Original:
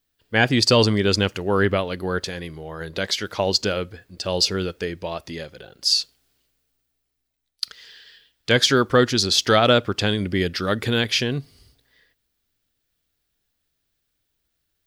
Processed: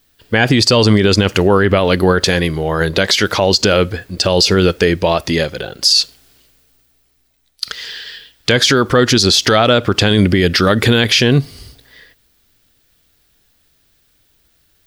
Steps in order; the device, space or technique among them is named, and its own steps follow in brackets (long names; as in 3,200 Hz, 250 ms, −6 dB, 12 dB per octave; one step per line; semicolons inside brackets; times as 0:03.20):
loud club master (downward compressor 2.5 to 1, threshold −20 dBFS, peak gain reduction 6.5 dB; hard clipping −7.5 dBFS, distortion −52 dB; boost into a limiter +18 dB)
level −1 dB